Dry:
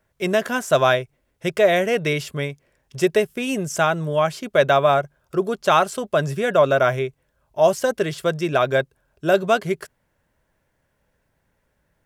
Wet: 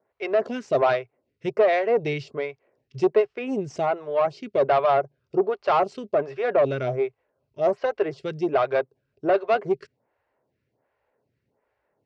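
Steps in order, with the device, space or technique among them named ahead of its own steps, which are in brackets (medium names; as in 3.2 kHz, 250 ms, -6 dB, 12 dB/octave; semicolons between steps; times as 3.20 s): vibe pedal into a guitar amplifier (lamp-driven phase shifter 1.3 Hz; valve stage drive 15 dB, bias 0.35; cabinet simulation 110–4300 Hz, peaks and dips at 120 Hz +5 dB, 170 Hz -8 dB, 420 Hz +6 dB, 750 Hz +4 dB, 1.6 kHz -5 dB, 3.4 kHz -8 dB)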